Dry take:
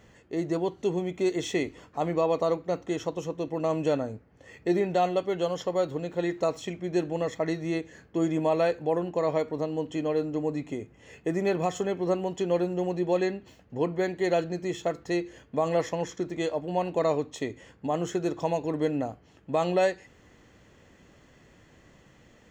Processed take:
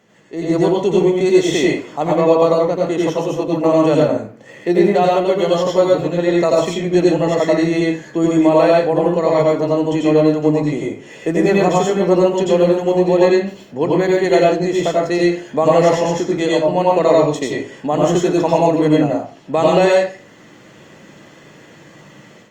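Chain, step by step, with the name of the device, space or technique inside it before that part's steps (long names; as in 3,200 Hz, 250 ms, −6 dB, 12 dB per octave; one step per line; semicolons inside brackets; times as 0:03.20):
far-field microphone of a smart speaker (convolution reverb RT60 0.40 s, pre-delay 83 ms, DRR −2.5 dB; high-pass filter 140 Hz 24 dB per octave; automatic gain control gain up to 10 dB; level +1 dB; Opus 48 kbit/s 48,000 Hz)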